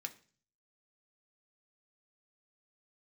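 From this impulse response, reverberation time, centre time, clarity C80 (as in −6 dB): 0.40 s, 5 ms, 21.0 dB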